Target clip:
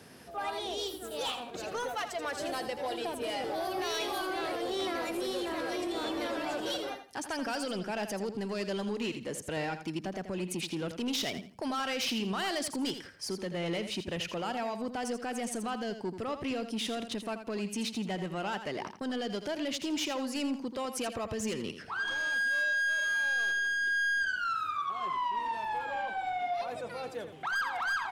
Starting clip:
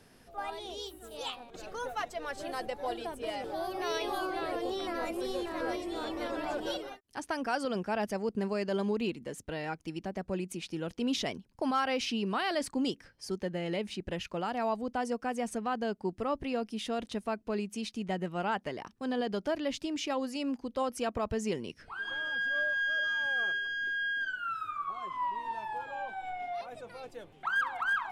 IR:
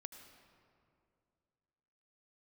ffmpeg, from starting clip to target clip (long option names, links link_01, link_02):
-filter_complex "[0:a]highpass=94,acrossover=split=2200[link_01][link_02];[link_01]alimiter=level_in=8dB:limit=-24dB:level=0:latency=1:release=165,volume=-8dB[link_03];[link_03][link_02]amix=inputs=2:normalize=0,asoftclip=type=tanh:threshold=-35dB,aecho=1:1:83|166|249:0.316|0.0759|0.0182,volume=7dB"